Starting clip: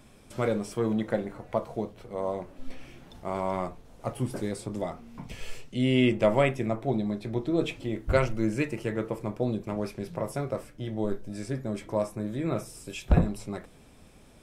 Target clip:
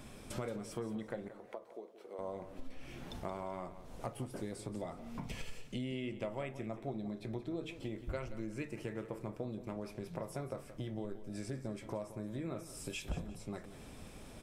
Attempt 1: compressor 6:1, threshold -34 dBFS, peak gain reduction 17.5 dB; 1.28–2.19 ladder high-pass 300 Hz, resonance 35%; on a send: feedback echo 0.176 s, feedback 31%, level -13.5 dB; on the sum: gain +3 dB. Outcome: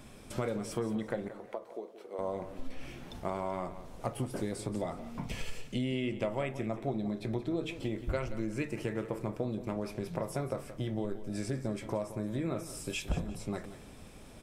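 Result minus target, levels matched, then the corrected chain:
compressor: peak gain reduction -6.5 dB
compressor 6:1, threshold -42 dBFS, peak gain reduction 24.5 dB; 1.28–2.19 ladder high-pass 300 Hz, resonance 35%; on a send: feedback echo 0.176 s, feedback 31%, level -13.5 dB; on the sum: gain +3 dB

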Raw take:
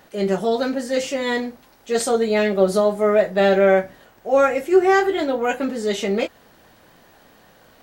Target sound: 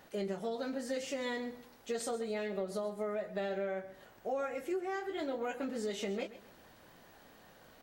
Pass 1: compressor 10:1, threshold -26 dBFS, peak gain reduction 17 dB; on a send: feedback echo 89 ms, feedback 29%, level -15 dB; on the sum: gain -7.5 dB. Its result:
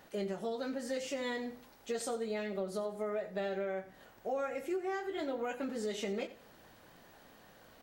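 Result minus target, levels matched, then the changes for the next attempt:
echo 41 ms early
change: feedback echo 0.13 s, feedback 29%, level -15 dB

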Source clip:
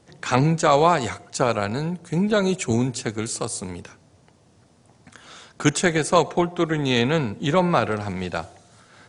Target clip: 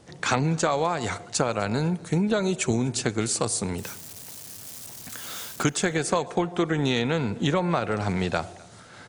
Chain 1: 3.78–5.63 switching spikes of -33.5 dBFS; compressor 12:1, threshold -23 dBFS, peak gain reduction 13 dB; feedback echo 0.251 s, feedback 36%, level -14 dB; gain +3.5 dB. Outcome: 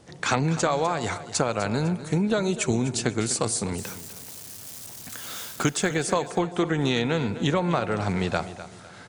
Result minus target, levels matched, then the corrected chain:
echo-to-direct +11 dB
3.78–5.63 switching spikes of -33.5 dBFS; compressor 12:1, threshold -23 dBFS, peak gain reduction 13 dB; feedback echo 0.251 s, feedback 36%, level -25 dB; gain +3.5 dB

